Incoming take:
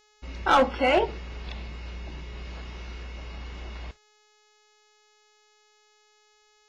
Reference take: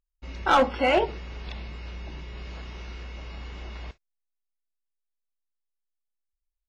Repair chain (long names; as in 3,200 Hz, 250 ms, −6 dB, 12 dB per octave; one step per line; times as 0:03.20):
hum removal 422.8 Hz, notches 17